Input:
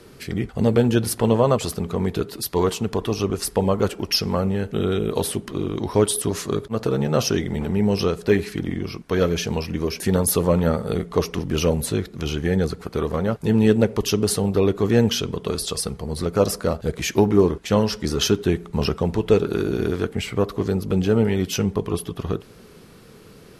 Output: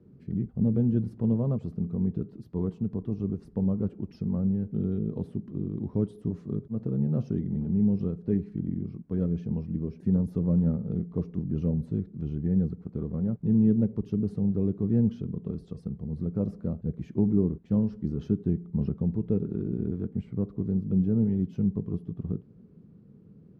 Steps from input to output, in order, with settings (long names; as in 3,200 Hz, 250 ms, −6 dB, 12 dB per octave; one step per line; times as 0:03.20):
resonant band-pass 190 Hz, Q 1.6
low-shelf EQ 200 Hz +11.5 dB
level −7.5 dB